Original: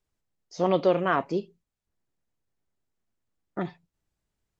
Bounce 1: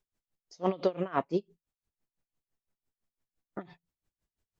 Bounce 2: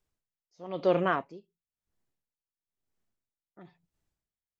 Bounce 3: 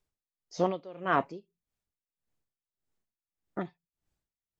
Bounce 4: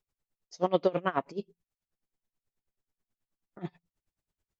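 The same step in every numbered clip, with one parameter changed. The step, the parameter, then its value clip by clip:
tremolo with a sine in dB, speed: 5.9, 1, 1.7, 9.3 Hertz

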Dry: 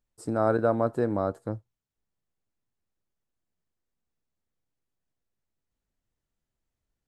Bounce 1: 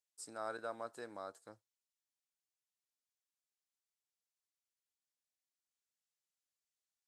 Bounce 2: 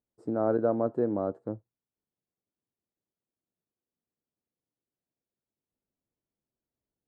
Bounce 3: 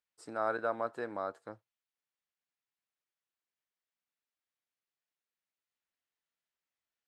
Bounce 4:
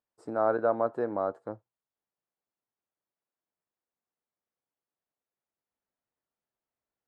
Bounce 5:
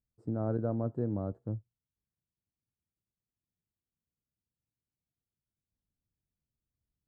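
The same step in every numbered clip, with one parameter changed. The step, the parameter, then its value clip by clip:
resonant band-pass, frequency: 6,800, 340, 2,400, 860, 110 Hertz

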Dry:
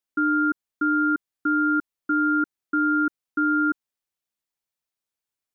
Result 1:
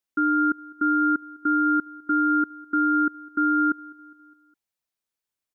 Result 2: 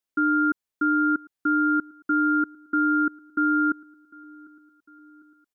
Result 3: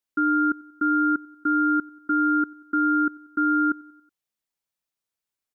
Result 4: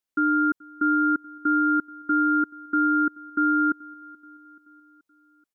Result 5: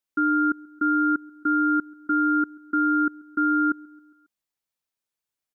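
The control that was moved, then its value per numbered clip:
repeating echo, delay time: 205, 751, 93, 430, 136 milliseconds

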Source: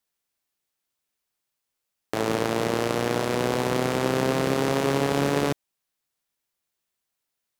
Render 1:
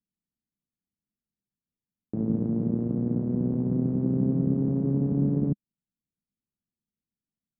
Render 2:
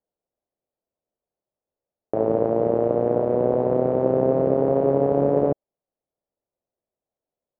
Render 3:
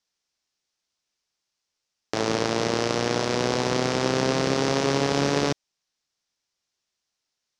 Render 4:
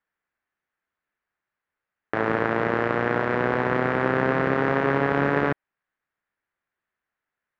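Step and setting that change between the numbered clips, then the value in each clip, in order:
low-pass with resonance, frequency: 210, 590, 5,600, 1,700 Hertz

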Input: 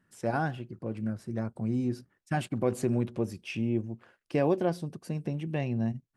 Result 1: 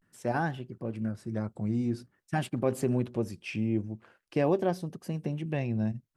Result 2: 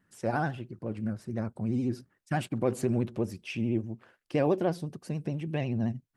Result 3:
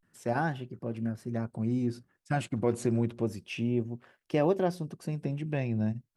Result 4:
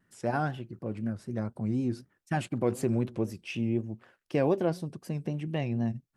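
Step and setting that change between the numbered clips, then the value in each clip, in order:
pitch vibrato, speed: 0.46, 14, 0.3, 4 Hertz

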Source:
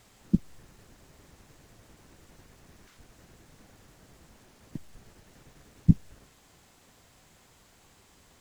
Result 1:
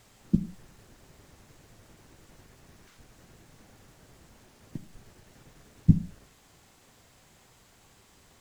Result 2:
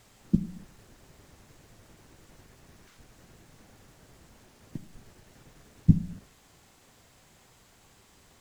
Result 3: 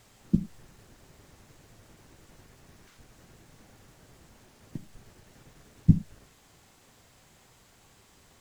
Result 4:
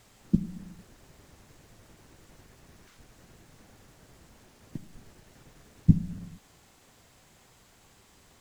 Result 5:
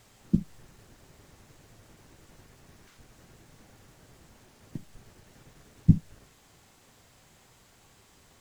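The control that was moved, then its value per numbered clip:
reverb whose tail is shaped and stops, gate: 210, 300, 130, 480, 90 milliseconds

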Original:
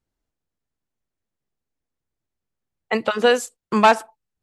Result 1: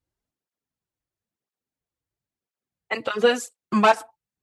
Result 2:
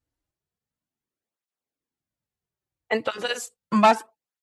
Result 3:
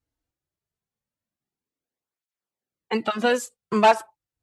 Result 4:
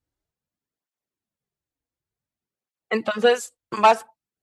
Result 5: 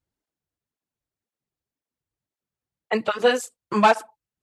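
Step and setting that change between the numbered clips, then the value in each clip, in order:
through-zero flanger with one copy inverted, nulls at: 0.99, 0.34, 0.22, 0.55, 1.9 Hertz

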